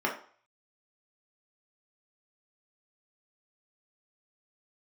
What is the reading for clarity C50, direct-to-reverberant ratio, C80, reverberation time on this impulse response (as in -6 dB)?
8.0 dB, -2.0 dB, 13.0 dB, 0.45 s